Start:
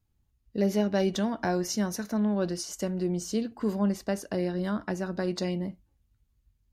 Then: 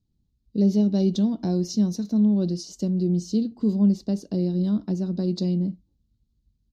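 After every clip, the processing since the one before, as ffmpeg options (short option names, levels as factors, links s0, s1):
-af "firequalizer=gain_entry='entry(110,0);entry(170,9);entry(590,-6);entry(1700,-20);entry(4000,3);entry(9600,-13)':delay=0.05:min_phase=1"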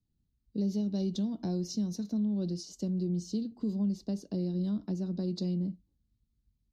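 -filter_complex "[0:a]acrossover=split=140|3000[s0][s1][s2];[s1]acompressor=threshold=0.0631:ratio=6[s3];[s0][s3][s2]amix=inputs=3:normalize=0,volume=0.473"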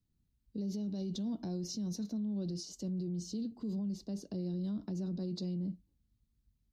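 -af "alimiter=level_in=2.37:limit=0.0631:level=0:latency=1:release=24,volume=0.422"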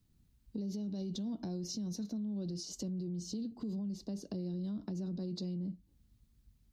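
-af "acompressor=threshold=0.00316:ratio=2.5,volume=2.66"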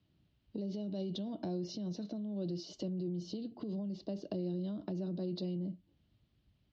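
-af "highpass=100,equalizer=f=230:t=q:w=4:g=-6,equalizer=f=330:t=q:w=4:g=5,equalizer=f=620:t=q:w=4:g=9,equalizer=f=3000:t=q:w=4:g=7,lowpass=f=4400:w=0.5412,lowpass=f=4400:w=1.3066,volume=1.19"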